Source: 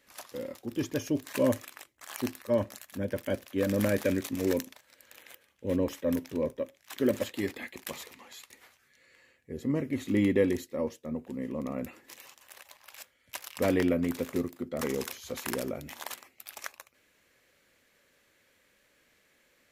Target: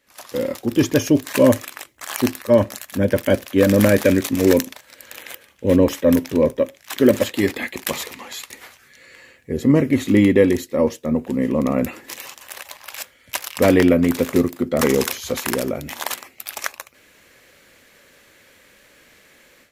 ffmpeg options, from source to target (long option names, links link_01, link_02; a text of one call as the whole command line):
ffmpeg -i in.wav -af "dynaudnorm=framelen=180:gausssize=3:maxgain=15.5dB" out.wav